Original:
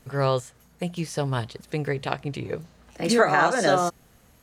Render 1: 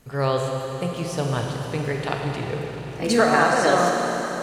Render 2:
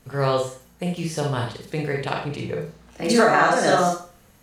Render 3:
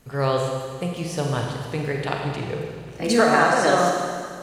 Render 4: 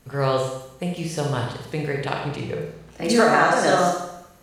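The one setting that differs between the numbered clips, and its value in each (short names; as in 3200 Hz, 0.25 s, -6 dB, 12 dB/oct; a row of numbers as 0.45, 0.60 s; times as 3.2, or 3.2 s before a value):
Schroeder reverb, RT60: 4.3, 0.4, 2, 0.83 s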